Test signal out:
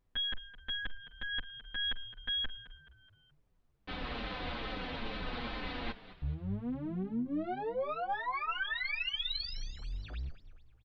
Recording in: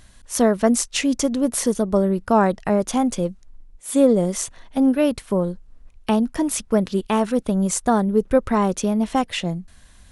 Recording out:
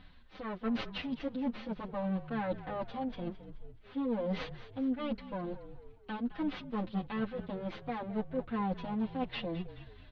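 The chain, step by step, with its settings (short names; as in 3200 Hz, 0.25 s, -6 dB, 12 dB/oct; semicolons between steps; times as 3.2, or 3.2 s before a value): minimum comb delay 3.9 ms; steep low-pass 4100 Hz 48 dB/oct; reverse; compressor 6:1, threshold -29 dBFS; reverse; added noise brown -67 dBFS; on a send: frequency-shifting echo 0.213 s, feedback 45%, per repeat -39 Hz, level -14.5 dB; on the sum: endless flanger 7.4 ms -2.3 Hz; gain -1.5 dB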